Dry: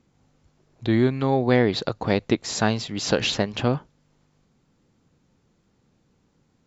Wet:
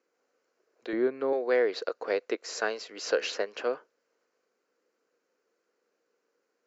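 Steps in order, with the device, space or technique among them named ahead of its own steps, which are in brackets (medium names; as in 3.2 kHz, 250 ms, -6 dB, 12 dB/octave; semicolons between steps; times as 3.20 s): phone speaker on a table (cabinet simulation 390–6800 Hz, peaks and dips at 470 Hz +7 dB, 840 Hz -7 dB, 1.5 kHz +5 dB, 3.5 kHz -10 dB); 0.93–1.33 s: tilt EQ -3.5 dB/octave; trim -6.5 dB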